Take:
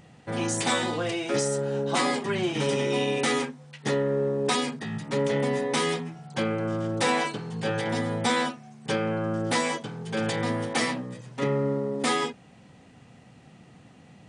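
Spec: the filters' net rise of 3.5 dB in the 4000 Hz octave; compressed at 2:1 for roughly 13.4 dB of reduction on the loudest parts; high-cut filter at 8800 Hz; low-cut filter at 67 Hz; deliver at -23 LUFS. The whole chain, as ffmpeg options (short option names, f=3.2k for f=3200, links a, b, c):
-af "highpass=67,lowpass=8.8k,equalizer=f=4k:t=o:g=4.5,acompressor=threshold=-46dB:ratio=2,volume=16dB"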